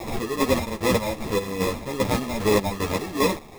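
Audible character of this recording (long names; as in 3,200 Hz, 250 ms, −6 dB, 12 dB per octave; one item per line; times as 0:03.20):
a quantiser's noise floor 6 bits, dither triangular
chopped level 2.5 Hz, depth 65%, duty 45%
aliases and images of a low sample rate 1,500 Hz, jitter 0%
a shimmering, thickened sound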